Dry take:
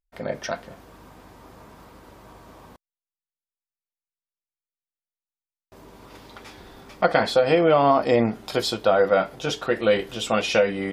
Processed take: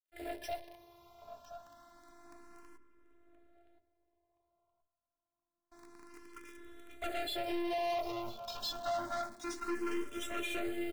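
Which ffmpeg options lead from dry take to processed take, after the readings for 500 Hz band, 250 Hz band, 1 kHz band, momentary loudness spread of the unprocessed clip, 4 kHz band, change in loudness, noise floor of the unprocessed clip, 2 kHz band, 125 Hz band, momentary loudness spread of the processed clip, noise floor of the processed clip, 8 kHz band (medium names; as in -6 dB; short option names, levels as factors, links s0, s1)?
-19.5 dB, -13.5 dB, -15.0 dB, 13 LU, -13.0 dB, -17.0 dB, under -85 dBFS, -16.0 dB, -25.5 dB, 20 LU, under -85 dBFS, -11.5 dB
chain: -filter_complex "[0:a]afftfilt=real='hypot(re,im)*cos(PI*b)':imag='0':win_size=512:overlap=0.75,asplit=2[s0][s1];[s1]adelay=14,volume=0.282[s2];[s0][s2]amix=inputs=2:normalize=0,adynamicequalizer=threshold=0.00794:dfrequency=1900:dqfactor=1.6:tfrequency=1900:tqfactor=1.6:attack=5:release=100:ratio=0.375:range=2.5:mode=cutabove:tftype=bell,acrusher=bits=9:dc=4:mix=0:aa=0.000001,bandreject=f=45.02:t=h:w=4,bandreject=f=90.04:t=h:w=4,bandreject=f=135.06:t=h:w=4,bandreject=f=180.08:t=h:w=4,bandreject=f=225.1:t=h:w=4,bandreject=f=270.12:t=h:w=4,bandreject=f=315.14:t=h:w=4,bandreject=f=360.16:t=h:w=4,bandreject=f=405.18:t=h:w=4,bandreject=f=450.2:t=h:w=4,bandreject=f=495.22:t=h:w=4,bandreject=f=540.24:t=h:w=4,bandreject=f=585.26:t=h:w=4,bandreject=f=630.28:t=h:w=4,bandreject=f=675.3:t=h:w=4,aeval=exprs='(tanh(44.7*val(0)+0.55)-tanh(0.55))/44.7':c=same,asplit=2[s3][s4];[s4]adelay=1023,lowpass=f=1600:p=1,volume=0.316,asplit=2[s5][s6];[s6]adelay=1023,lowpass=f=1600:p=1,volume=0.31,asplit=2[s7][s8];[s8]adelay=1023,lowpass=f=1600:p=1,volume=0.31[s9];[s3][s5][s7][s9]amix=inputs=4:normalize=0,asplit=2[s10][s11];[s11]afreqshift=0.28[s12];[s10][s12]amix=inputs=2:normalize=1,volume=1.12"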